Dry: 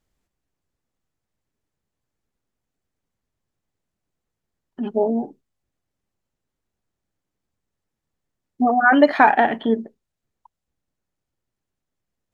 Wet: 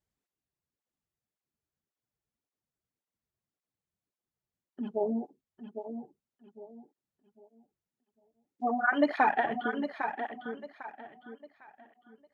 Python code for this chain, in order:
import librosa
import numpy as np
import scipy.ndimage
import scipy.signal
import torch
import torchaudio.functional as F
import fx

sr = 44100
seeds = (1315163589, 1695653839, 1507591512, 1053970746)

p1 = x + fx.echo_feedback(x, sr, ms=803, feedback_pct=31, wet_db=-8.0, dry=0)
p2 = fx.flanger_cancel(p1, sr, hz=1.8, depth_ms=4.4)
y = p2 * librosa.db_to_amplitude(-8.5)